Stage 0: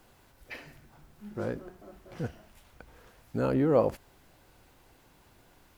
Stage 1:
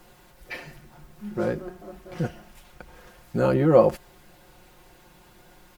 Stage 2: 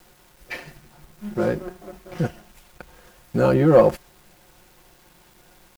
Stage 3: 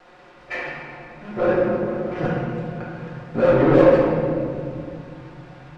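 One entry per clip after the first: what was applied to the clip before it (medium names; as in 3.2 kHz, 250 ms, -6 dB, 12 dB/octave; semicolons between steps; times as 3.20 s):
comb 5.6 ms; trim +5.5 dB
waveshaping leveller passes 1; bit crusher 9-bit
distance through air 110 m; overdrive pedal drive 26 dB, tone 1.3 kHz, clips at -3 dBFS; reverberation RT60 2.3 s, pre-delay 3 ms, DRR -5.5 dB; trim -11 dB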